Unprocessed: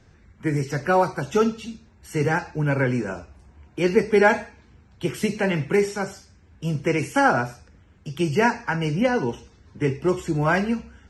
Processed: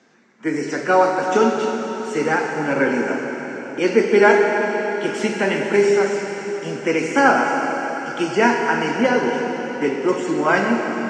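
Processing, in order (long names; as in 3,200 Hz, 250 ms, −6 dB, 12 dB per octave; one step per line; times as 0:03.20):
elliptic band-pass filter 230–7,400 Hz, stop band 50 dB
dense smooth reverb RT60 4.7 s, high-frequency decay 0.95×, DRR 1 dB
level +3.5 dB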